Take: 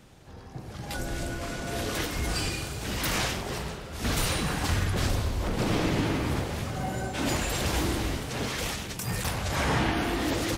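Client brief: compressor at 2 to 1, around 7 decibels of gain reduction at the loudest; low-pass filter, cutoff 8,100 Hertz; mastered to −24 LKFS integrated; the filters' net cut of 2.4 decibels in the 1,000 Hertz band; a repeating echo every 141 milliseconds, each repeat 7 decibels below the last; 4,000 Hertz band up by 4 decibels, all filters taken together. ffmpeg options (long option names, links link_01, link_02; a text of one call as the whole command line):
ffmpeg -i in.wav -af "lowpass=8100,equalizer=frequency=1000:width_type=o:gain=-3.5,equalizer=frequency=4000:width_type=o:gain=5.5,acompressor=threshold=-35dB:ratio=2,aecho=1:1:141|282|423|564|705:0.447|0.201|0.0905|0.0407|0.0183,volume=9.5dB" out.wav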